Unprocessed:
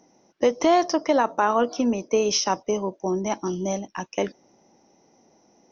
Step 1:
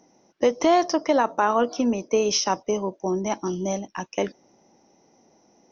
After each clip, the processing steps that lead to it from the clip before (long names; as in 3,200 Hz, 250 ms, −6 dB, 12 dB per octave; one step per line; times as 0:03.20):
no processing that can be heard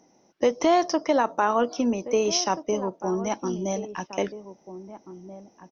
slap from a distant wall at 280 metres, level −13 dB
level −1.5 dB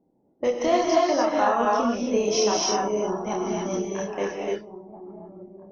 multi-voice chorus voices 6, 0.86 Hz, delay 29 ms, depth 1.4 ms
reverb whose tail is shaped and stops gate 320 ms rising, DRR −2.5 dB
low-pass that shuts in the quiet parts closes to 450 Hz, open at −22 dBFS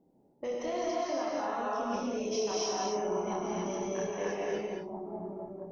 brickwall limiter −16 dBFS, peak gain reduction 7 dB
reversed playback
downward compressor 12 to 1, threshold −32 dBFS, peak gain reduction 12.5 dB
reversed playback
reverb whose tail is shaped and stops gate 250 ms rising, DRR 1.5 dB